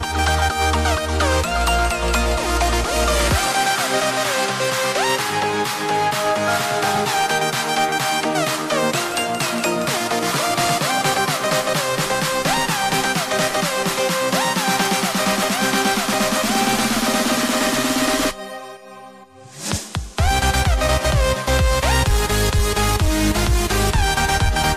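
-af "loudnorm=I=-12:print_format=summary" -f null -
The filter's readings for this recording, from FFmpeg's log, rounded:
Input Integrated:    -18.5 LUFS
Input True Peak:      -9.6 dBTP
Input LRA:             1.6 LU
Input Threshold:     -28.7 LUFS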